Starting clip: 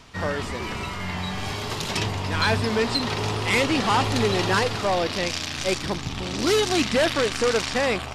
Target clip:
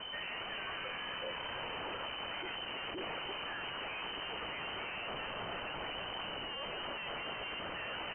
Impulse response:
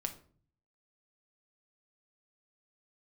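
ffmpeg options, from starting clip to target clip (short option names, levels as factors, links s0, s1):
-filter_complex "[0:a]asplit=8[s0][s1][s2][s3][s4][s5][s6][s7];[s1]adelay=335,afreqshift=-47,volume=0.266[s8];[s2]adelay=670,afreqshift=-94,volume=0.162[s9];[s3]adelay=1005,afreqshift=-141,volume=0.0989[s10];[s4]adelay=1340,afreqshift=-188,volume=0.0603[s11];[s5]adelay=1675,afreqshift=-235,volume=0.0367[s12];[s6]adelay=2010,afreqshift=-282,volume=0.0224[s13];[s7]adelay=2345,afreqshift=-329,volume=0.0136[s14];[s0][s8][s9][s10][s11][s12][s13][s14]amix=inputs=8:normalize=0,aeval=exprs='val(0)+0.01*(sin(2*PI*60*n/s)+sin(2*PI*2*60*n/s)/2+sin(2*PI*3*60*n/s)/3+sin(2*PI*4*60*n/s)/4+sin(2*PI*5*60*n/s)/5)':c=same,asetrate=29433,aresample=44100,atempo=1.49831,highshelf=f=2200:g=11,aeval=exprs='(tanh(20*val(0)+0.3)-tanh(0.3))/20':c=same,aeval=exprs='0.0668*sin(PI/2*2*val(0)/0.0668)':c=same,alimiter=level_in=1.78:limit=0.0631:level=0:latency=1,volume=0.562,lowpass=f=2600:t=q:w=0.5098,lowpass=f=2600:t=q:w=0.6013,lowpass=f=2600:t=q:w=0.9,lowpass=f=2600:t=q:w=2.563,afreqshift=-3100,acompressor=threshold=0.0316:ratio=6,tiltshelf=f=1200:g=5.5,volume=0.562"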